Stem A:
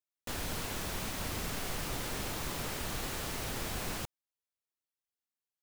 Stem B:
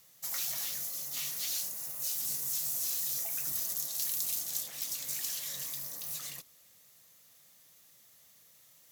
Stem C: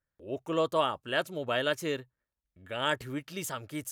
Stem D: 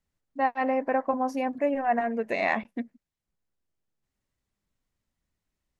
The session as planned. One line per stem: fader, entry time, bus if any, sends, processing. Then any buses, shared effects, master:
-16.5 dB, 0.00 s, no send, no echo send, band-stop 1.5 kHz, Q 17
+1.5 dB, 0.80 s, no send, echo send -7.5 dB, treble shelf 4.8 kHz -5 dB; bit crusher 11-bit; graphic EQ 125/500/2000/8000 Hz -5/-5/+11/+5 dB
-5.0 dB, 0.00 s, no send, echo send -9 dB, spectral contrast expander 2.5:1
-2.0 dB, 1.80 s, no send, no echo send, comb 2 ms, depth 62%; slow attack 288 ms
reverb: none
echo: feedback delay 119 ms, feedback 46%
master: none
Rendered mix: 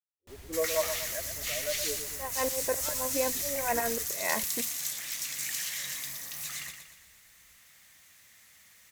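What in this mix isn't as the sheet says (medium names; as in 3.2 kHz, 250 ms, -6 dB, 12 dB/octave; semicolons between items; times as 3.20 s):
stem B: entry 0.80 s -> 0.30 s; master: extra peaking EQ 67 Hz +12 dB 1.3 oct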